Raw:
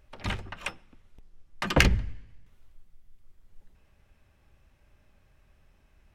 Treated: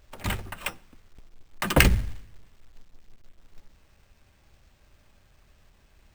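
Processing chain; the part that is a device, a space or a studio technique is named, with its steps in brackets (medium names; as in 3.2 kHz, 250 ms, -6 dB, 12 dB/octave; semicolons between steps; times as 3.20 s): early companding sampler (sample-rate reducer 11 kHz, jitter 0%; companded quantiser 6-bit); trim +2.5 dB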